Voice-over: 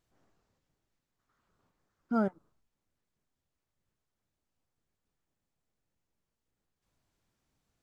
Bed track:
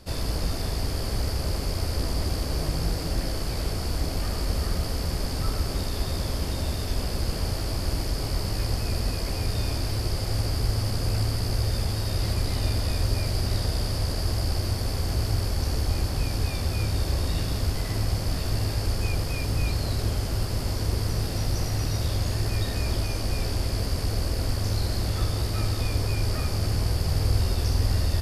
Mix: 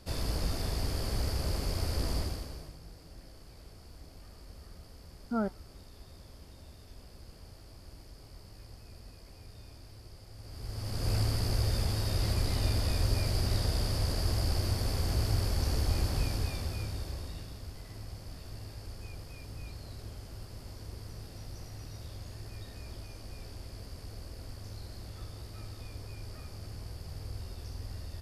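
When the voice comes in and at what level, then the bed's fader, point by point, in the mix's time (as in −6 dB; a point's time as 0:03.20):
3.20 s, −2.5 dB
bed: 0:02.17 −5 dB
0:02.79 −23.5 dB
0:10.36 −23.5 dB
0:11.11 −4 dB
0:16.19 −4 dB
0:17.59 −18 dB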